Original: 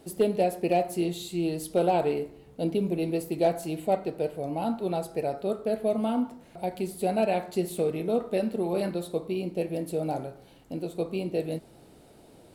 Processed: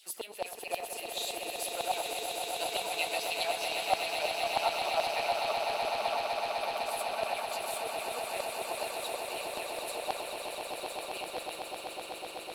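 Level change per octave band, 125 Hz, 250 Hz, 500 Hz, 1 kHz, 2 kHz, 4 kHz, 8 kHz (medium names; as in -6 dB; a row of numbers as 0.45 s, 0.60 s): -23.5 dB, -21.5 dB, -8.0 dB, 0.0 dB, +7.0 dB, +9.5 dB, +5.5 dB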